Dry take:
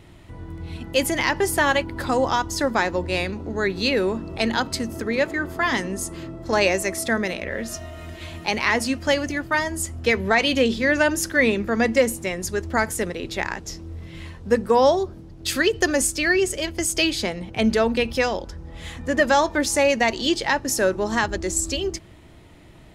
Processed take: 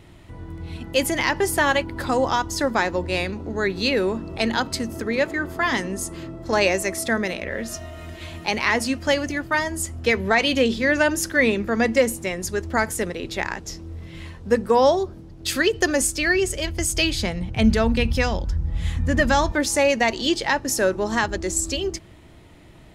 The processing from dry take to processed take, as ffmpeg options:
-filter_complex "[0:a]asettb=1/sr,asplit=3[s0][s1][s2];[s0]atrim=end=15.984[s3];[s1]atrim=start=15.98:end=19.52,asetpts=PTS-STARTPTS,afade=t=in:d=0.004:c=qsin,afade=t=out:st=3.536:d=0.004:c=qsin,asubboost=boost=8:cutoff=160[s4];[s2]atrim=start=19.516[s5];[s3][s4]acrossfade=d=0.004:c1=hsin:c2=qsin[s6];[s6][s5]acrossfade=d=0.004:c1=qsin:c2=hsin"

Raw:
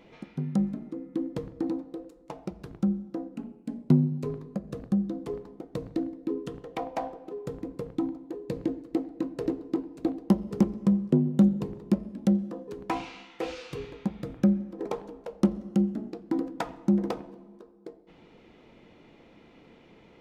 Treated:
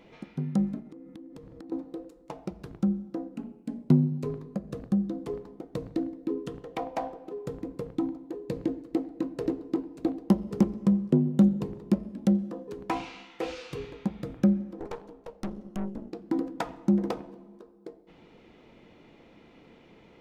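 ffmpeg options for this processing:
-filter_complex "[0:a]asettb=1/sr,asplit=3[s0][s1][s2];[s0]atrim=end=0.804[s3];[s1]atrim=start=0.8:end=1.72,asetpts=PTS-STARTPTS,afade=t=in:d=0.004:c=qsin,afade=t=out:st=0.916:d=0.004:c=qsin,acompressor=threshold=0.00794:ratio=10:attack=3.2:release=140:knee=1:detection=peak[s4];[s2]atrim=start=1.716[s5];[s3][s4]acrossfade=d=0.004:c1=hsin:c2=qsin[s6];[s6][s5]acrossfade=d=0.004:c1=qsin:c2=hsin,asettb=1/sr,asplit=3[s7][s8][s9];[s7]atrim=end=14.794[s10];[s8]atrim=start=14.79:end=16.13,asetpts=PTS-STARTPTS,afade=t=in:d=0.004:c=qsin,afade=t=out:st=1.336:d=0.004:c=qsin,aeval=exprs='(tanh(31.6*val(0)+0.8)-tanh(0.8))/31.6':c=same[s11];[s9]atrim=start=16.126[s12];[s10][s11]acrossfade=d=0.004:c1=hsin:c2=qsin[s13];[s13][s12]acrossfade=d=0.004:c1=qsin:c2=hsin"

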